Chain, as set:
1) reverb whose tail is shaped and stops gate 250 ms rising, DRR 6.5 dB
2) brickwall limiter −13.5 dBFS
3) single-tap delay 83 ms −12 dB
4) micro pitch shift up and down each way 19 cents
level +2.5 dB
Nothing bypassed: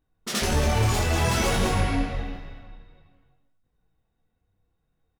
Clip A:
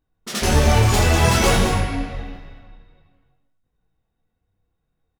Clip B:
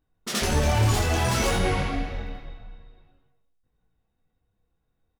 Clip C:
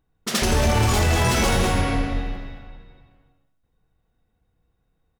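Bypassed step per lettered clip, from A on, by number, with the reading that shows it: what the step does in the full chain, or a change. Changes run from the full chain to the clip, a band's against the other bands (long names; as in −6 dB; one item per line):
2, average gain reduction 3.5 dB
1, change in momentary loudness spread +3 LU
4, change in crest factor −2.5 dB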